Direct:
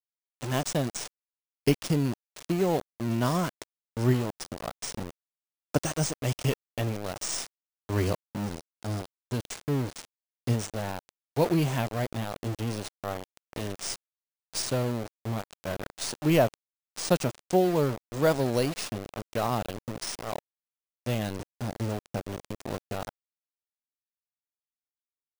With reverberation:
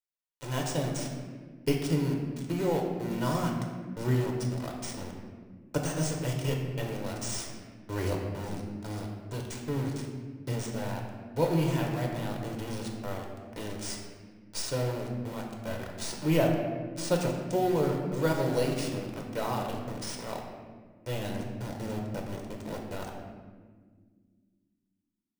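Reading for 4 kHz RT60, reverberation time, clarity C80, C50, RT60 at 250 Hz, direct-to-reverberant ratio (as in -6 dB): 1.0 s, 1.6 s, 5.0 dB, 3.5 dB, 3.1 s, 0.5 dB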